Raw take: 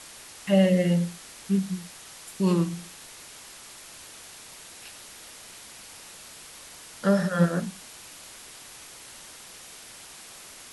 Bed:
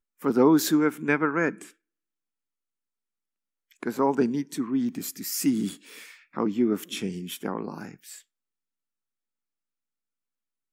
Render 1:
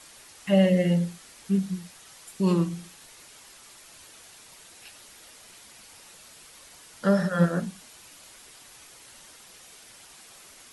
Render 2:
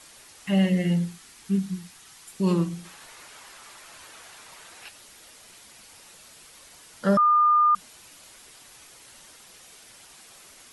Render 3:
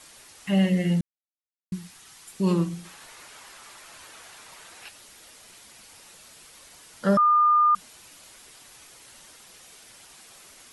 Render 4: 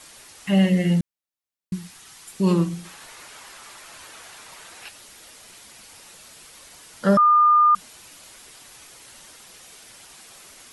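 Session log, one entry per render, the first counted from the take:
noise reduction 6 dB, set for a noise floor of -46 dBFS
0.48–2.32 s: peaking EQ 560 Hz -10.5 dB 0.42 oct; 2.85–4.89 s: peaking EQ 1.2 kHz +8.5 dB 2.4 oct; 7.17–7.75 s: bleep 1.21 kHz -15.5 dBFS
1.01–1.72 s: mute
trim +3.5 dB

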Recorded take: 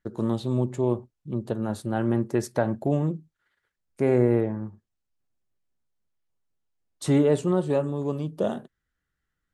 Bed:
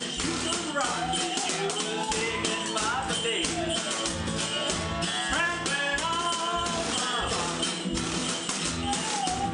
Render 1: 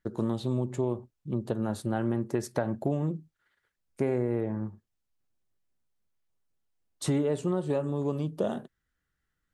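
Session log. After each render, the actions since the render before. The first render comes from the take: compression 6:1, threshold -24 dBFS, peak gain reduction 9 dB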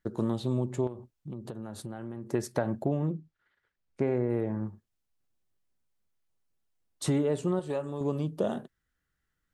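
0.87–2.27 s: compression, threshold -35 dBFS; 2.84–4.30 s: distance through air 110 m; 7.59–8.01 s: peaking EQ 180 Hz -7.5 dB 2.5 oct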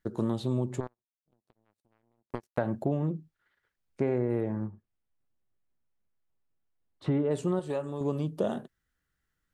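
0.80–2.58 s: power-law waveshaper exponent 3; 4.66–7.31 s: distance through air 400 m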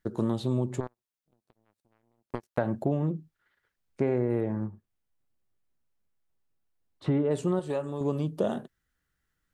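trim +1.5 dB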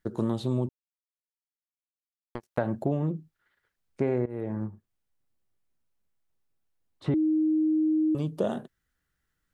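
0.69–2.35 s: mute; 4.26–4.68 s: fade in equal-power, from -19 dB; 7.14–8.15 s: bleep 312 Hz -21 dBFS

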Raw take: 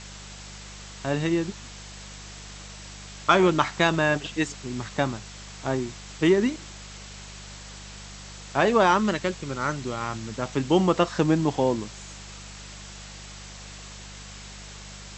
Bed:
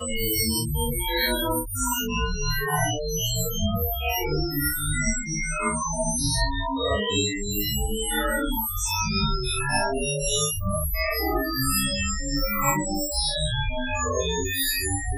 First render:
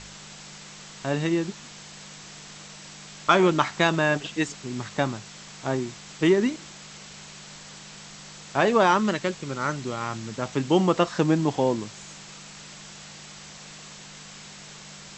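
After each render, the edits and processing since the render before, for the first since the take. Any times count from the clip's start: de-hum 50 Hz, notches 2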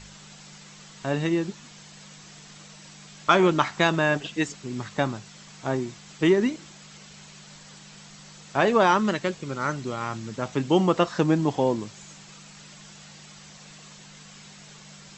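noise reduction 6 dB, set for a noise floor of -44 dBFS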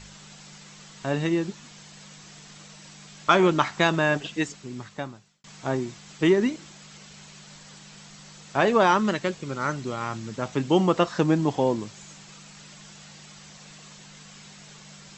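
4.31–5.44 s: fade out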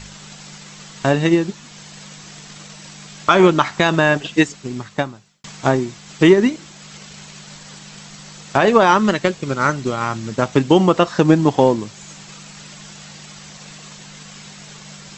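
transient shaper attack +6 dB, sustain -2 dB; loudness maximiser +8 dB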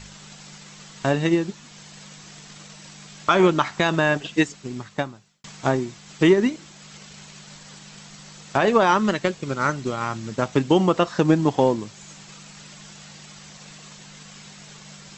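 trim -5 dB

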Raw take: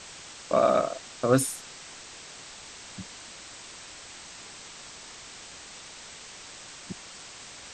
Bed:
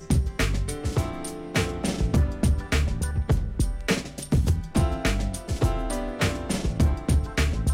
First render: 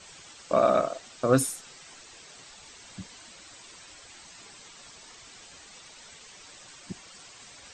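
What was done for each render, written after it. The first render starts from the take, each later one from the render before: noise reduction 9 dB, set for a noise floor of -46 dBFS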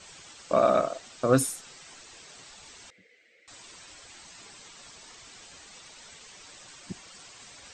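2.90–3.48 s: two resonant band-passes 990 Hz, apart 2.1 oct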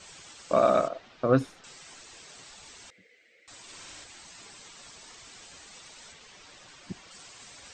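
0.88–1.64 s: distance through air 240 m; 3.62–4.04 s: flutter echo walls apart 10.2 m, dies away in 1.2 s; 6.12–7.11 s: distance through air 71 m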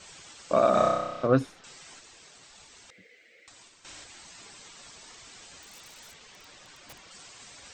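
0.70–1.27 s: flutter echo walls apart 5.4 m, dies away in 1.1 s; 1.99–3.85 s: compressor with a negative ratio -52 dBFS, ratio -0.5; 5.62–7.09 s: integer overflow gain 40.5 dB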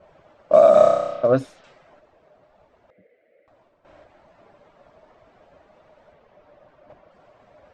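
level-controlled noise filter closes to 880 Hz, open at -23.5 dBFS; peaking EQ 610 Hz +14 dB 0.36 oct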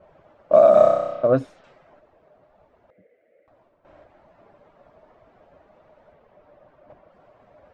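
treble shelf 2.8 kHz -9.5 dB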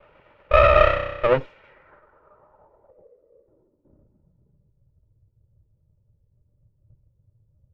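comb filter that takes the minimum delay 2.1 ms; low-pass sweep 2.7 kHz -> 110 Hz, 1.47–4.82 s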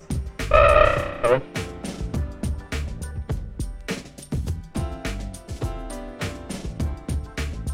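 add bed -5 dB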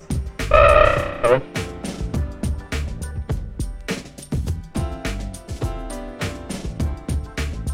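trim +3 dB; peak limiter -2 dBFS, peak gain reduction 1.5 dB

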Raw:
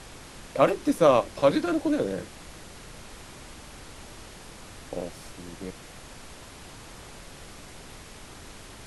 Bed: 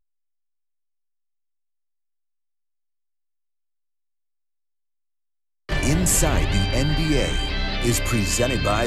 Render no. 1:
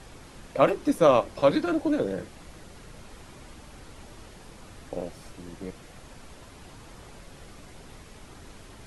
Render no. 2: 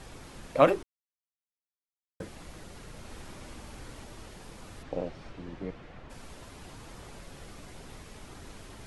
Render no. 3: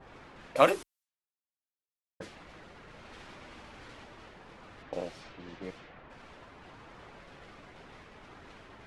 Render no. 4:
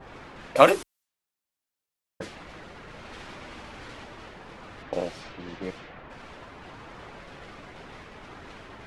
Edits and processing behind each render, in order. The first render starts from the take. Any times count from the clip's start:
noise reduction 6 dB, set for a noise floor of -46 dBFS
0.83–2.20 s: mute; 2.98–4.04 s: flutter echo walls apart 11.5 m, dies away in 0.61 s; 4.82–6.09 s: low-pass 4.4 kHz -> 2.5 kHz
level-controlled noise filter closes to 660 Hz, open at -33.5 dBFS; tilt EQ +2.5 dB/octave
trim +7 dB; peak limiter -1 dBFS, peak gain reduction 1.5 dB

